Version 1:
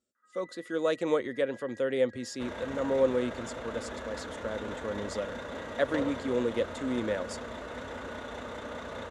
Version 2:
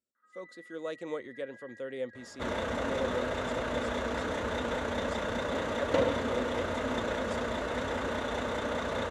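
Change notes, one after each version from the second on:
speech -9.5 dB; second sound +7.0 dB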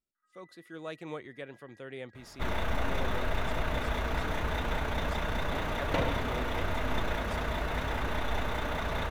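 first sound -10.5 dB; master: remove cabinet simulation 100–9900 Hz, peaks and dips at 150 Hz -9 dB, 240 Hz +6 dB, 520 Hz +10 dB, 750 Hz -4 dB, 2.4 kHz -5 dB, 7.2 kHz +6 dB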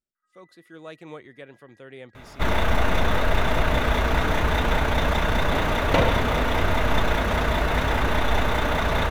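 second sound +10.0 dB

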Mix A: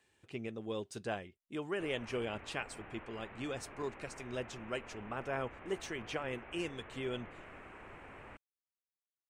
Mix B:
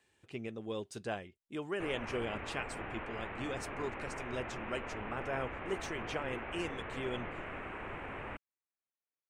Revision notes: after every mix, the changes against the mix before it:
background +9.0 dB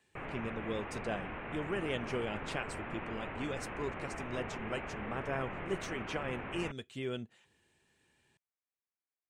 background: entry -1.65 s; master: add peaking EQ 170 Hz +5.5 dB 0.91 oct

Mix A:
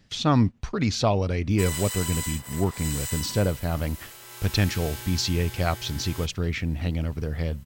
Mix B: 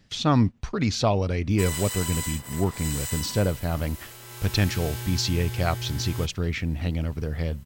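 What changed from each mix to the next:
background: remove high-pass 450 Hz 6 dB/octave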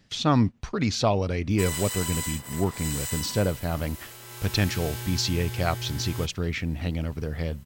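master: add bass shelf 82 Hz -5.5 dB

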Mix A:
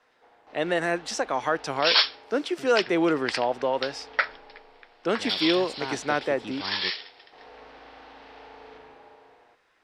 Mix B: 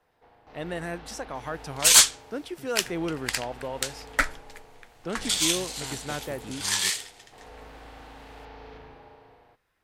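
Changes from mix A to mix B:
speech -9.5 dB; second sound: remove brick-wall FIR band-pass 350–5600 Hz; master: remove three-band isolator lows -15 dB, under 250 Hz, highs -20 dB, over 7.6 kHz

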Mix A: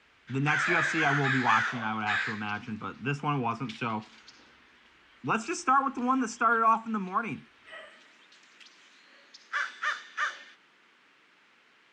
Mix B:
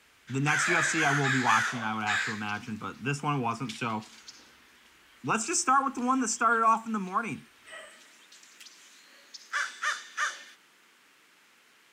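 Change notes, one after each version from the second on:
master: remove low-pass 3.8 kHz 12 dB/octave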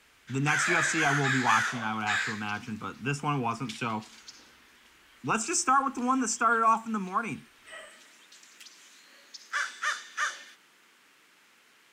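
master: remove high-pass 46 Hz

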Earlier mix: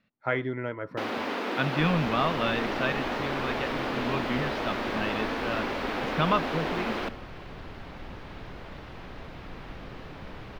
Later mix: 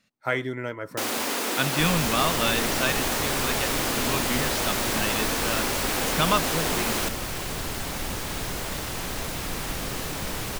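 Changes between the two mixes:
second sound +8.5 dB; master: remove distance through air 330 m

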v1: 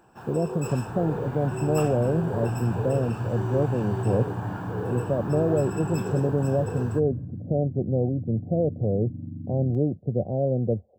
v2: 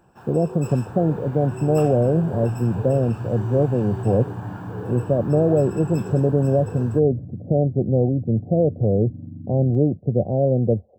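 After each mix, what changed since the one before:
speech +5.5 dB; first sound: send -9.5 dB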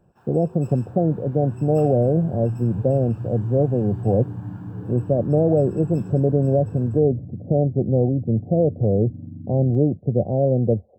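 first sound -11.0 dB

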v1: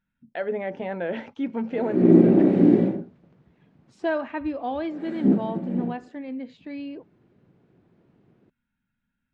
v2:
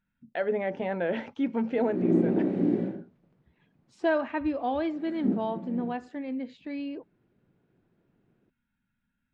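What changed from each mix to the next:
background -9.0 dB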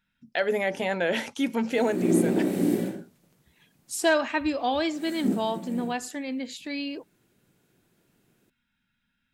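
master: remove tape spacing loss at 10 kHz 43 dB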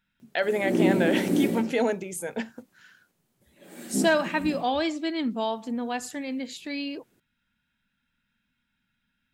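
background: entry -1.30 s

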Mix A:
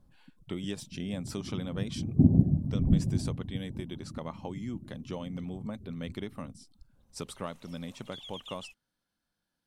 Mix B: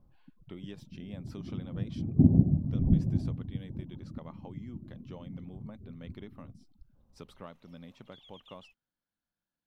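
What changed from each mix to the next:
speech -8.5 dB; master: add peaking EQ 8.6 kHz -15 dB 1.1 oct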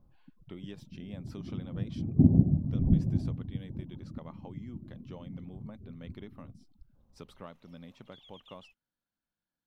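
no change

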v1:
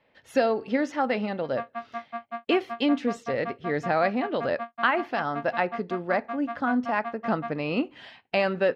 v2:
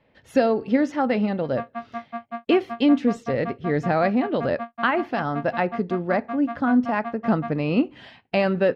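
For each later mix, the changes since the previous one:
master: add bass shelf 330 Hz +11 dB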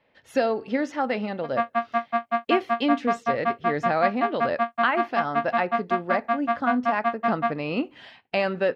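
background +10.5 dB; master: add bass shelf 330 Hz -11 dB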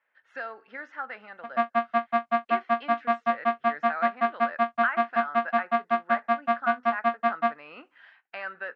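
speech: add band-pass filter 1.5 kHz, Q 3.5; master: add low-pass 7.6 kHz 12 dB/octave

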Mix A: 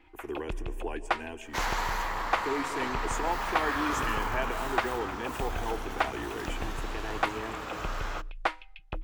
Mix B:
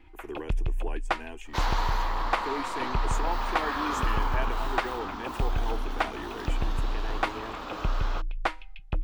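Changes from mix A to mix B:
first sound: add tone controls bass +9 dB, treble +2 dB; second sound: add ten-band graphic EQ 125 Hz -9 dB, 250 Hz +6 dB, 1 kHz +3 dB, 2 kHz -5 dB, 4 kHz +6 dB, 8 kHz -7 dB, 16 kHz -5 dB; reverb: off

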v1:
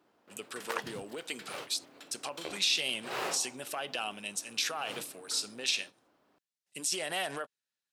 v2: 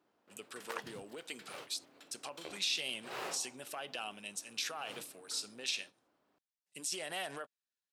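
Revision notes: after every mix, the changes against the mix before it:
speech -6.0 dB; background -6.5 dB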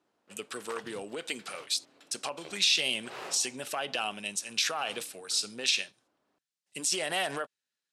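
speech +9.5 dB; master: add low-pass 11 kHz 12 dB/octave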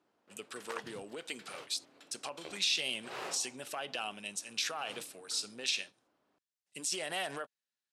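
speech -6.0 dB

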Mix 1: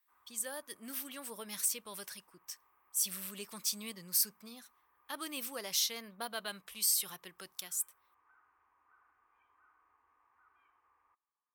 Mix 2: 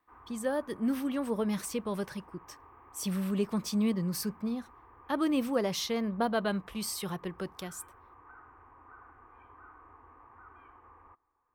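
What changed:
speech -7.0 dB; master: remove pre-emphasis filter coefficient 0.97

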